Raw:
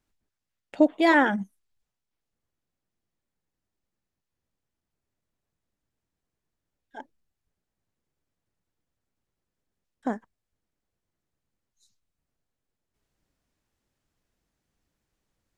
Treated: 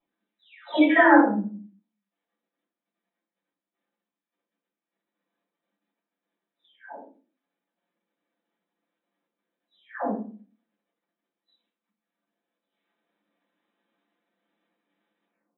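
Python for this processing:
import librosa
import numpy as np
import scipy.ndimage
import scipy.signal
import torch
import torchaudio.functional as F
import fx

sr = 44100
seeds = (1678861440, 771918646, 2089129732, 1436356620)

y = fx.spec_delay(x, sr, highs='early', ms=703)
y = fx.level_steps(y, sr, step_db=12)
y = fx.brickwall_bandpass(y, sr, low_hz=190.0, high_hz=4000.0)
y = fx.room_shoebox(y, sr, seeds[0], volume_m3=250.0, walls='furnished', distance_m=6.0)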